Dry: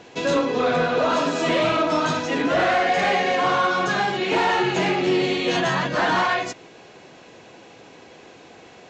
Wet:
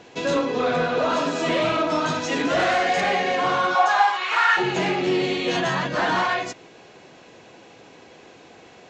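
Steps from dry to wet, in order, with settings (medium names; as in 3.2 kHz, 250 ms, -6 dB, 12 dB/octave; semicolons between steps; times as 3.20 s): 2.21–3.00 s: treble shelf 3.9 kHz -> 6.2 kHz +9.5 dB; 3.74–4.56 s: resonant high-pass 710 Hz -> 1.5 kHz, resonance Q 4.9; trim -1.5 dB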